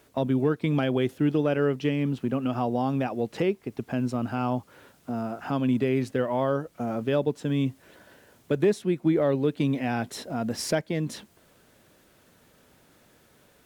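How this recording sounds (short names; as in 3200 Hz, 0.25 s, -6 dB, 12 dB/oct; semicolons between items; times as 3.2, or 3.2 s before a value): noise floor -60 dBFS; spectral tilt -6.5 dB/oct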